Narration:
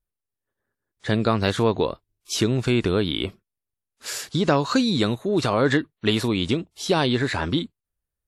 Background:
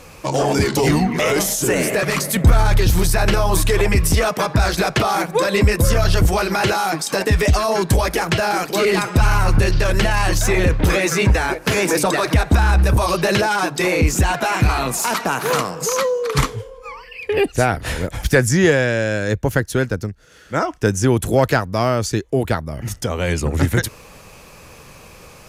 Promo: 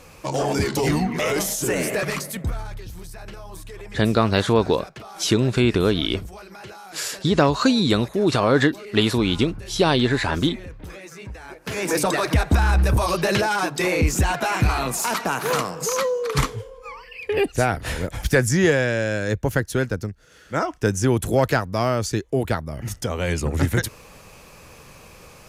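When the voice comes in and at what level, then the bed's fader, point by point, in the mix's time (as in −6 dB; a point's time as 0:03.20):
2.90 s, +2.5 dB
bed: 0:02.06 −5 dB
0:02.83 −22 dB
0:11.38 −22 dB
0:11.95 −3.5 dB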